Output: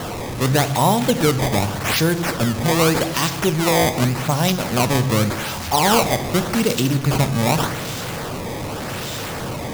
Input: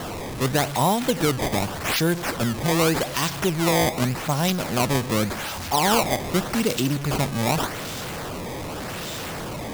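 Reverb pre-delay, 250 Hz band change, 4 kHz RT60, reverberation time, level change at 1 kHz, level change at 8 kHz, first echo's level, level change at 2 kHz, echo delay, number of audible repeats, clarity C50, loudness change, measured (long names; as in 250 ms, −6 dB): 3 ms, +4.0 dB, 0.75 s, 1.1 s, +4.0 dB, +4.0 dB, no echo audible, +3.5 dB, no echo audible, no echo audible, 14.5 dB, +4.0 dB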